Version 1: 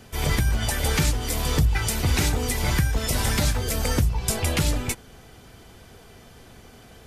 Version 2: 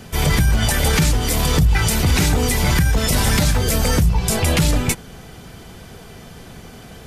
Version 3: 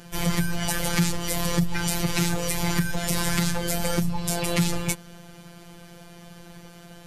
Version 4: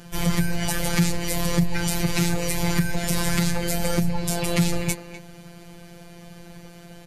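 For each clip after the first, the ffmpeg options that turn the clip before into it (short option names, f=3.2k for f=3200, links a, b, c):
-af "equalizer=f=170:t=o:w=0.42:g=7.5,alimiter=limit=-16dB:level=0:latency=1:release=15,volume=8dB"
-af "afftfilt=real='hypot(re,im)*cos(PI*b)':imag='0':win_size=1024:overlap=0.75,volume=-3dB"
-filter_complex "[0:a]lowshelf=f=230:g=3.5,asplit=2[a][b];[b]adelay=250,highpass=300,lowpass=3.4k,asoftclip=type=hard:threshold=-11.5dB,volume=-10dB[c];[a][c]amix=inputs=2:normalize=0"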